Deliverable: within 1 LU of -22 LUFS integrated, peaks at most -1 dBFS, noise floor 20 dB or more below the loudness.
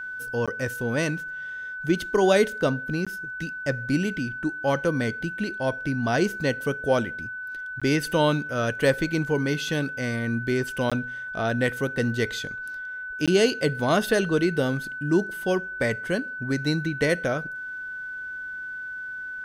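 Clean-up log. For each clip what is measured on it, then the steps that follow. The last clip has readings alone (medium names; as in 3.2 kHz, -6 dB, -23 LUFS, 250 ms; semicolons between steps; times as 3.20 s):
dropouts 5; longest dropout 16 ms; steady tone 1.5 kHz; tone level -32 dBFS; loudness -26.0 LUFS; peak level -8.0 dBFS; loudness target -22.0 LUFS
-> interpolate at 0.46/3.05/7.80/10.90/13.26 s, 16 ms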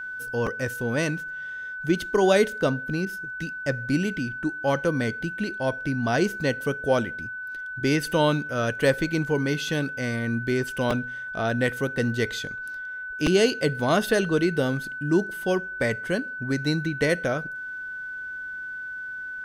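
dropouts 0; steady tone 1.5 kHz; tone level -32 dBFS
-> band-stop 1.5 kHz, Q 30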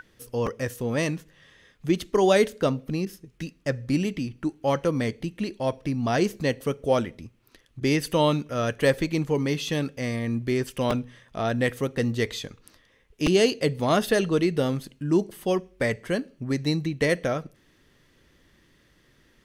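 steady tone not found; loudness -26.0 LUFS; peak level -8.5 dBFS; loudness target -22.0 LUFS
-> trim +4 dB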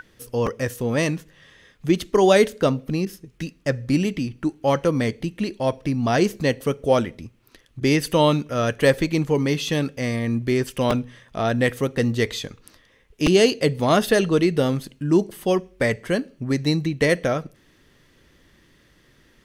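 loudness -22.0 LUFS; peak level -4.5 dBFS; noise floor -58 dBFS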